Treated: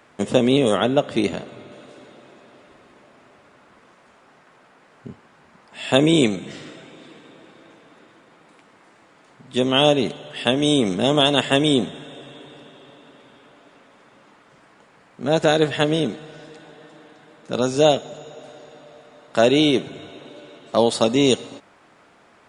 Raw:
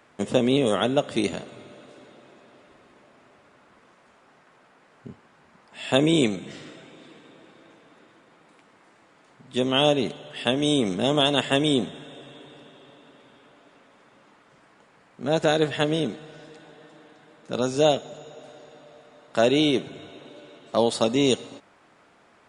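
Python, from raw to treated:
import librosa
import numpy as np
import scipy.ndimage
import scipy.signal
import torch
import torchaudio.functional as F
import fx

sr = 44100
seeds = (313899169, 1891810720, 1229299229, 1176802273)

y = fx.high_shelf(x, sr, hz=5900.0, db=-9.5, at=(0.77, 1.72))
y = F.gain(torch.from_numpy(y), 4.0).numpy()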